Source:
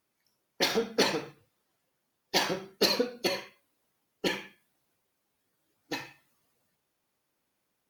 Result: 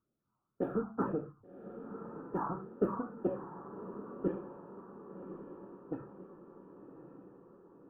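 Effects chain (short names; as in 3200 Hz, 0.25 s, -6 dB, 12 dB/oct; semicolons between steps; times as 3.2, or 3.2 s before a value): elliptic low-pass 1300 Hz, stop band 40 dB; phaser stages 4, 1.9 Hz, lowest notch 460–1000 Hz; diffused feedback echo 1.124 s, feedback 56%, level -10 dB; gain +2 dB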